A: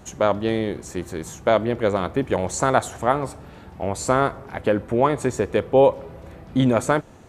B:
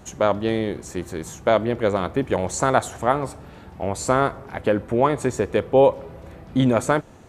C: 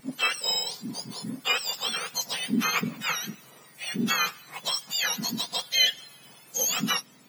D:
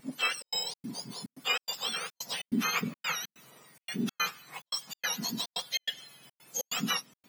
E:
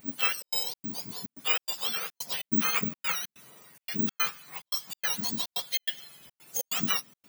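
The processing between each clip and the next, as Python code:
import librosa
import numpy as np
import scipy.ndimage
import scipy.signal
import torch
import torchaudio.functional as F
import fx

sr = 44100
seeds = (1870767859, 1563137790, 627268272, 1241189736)

y1 = x
y2 = fx.octave_mirror(y1, sr, pivot_hz=1300.0)
y2 = fx.wow_flutter(y2, sr, seeds[0], rate_hz=2.1, depth_cents=29.0)
y2 = fx.dynamic_eq(y2, sr, hz=5500.0, q=3.5, threshold_db=-42.0, ratio=4.0, max_db=6)
y2 = F.gain(torch.from_numpy(y2), -3.5).numpy()
y3 = fx.step_gate(y2, sr, bpm=143, pattern='xxxx.xx.xxxx.xx.', floor_db=-60.0, edge_ms=4.5)
y3 = F.gain(torch.from_numpy(y3), -4.0).numpy()
y4 = (np.kron(y3[::2], np.eye(2)[0]) * 2)[:len(y3)]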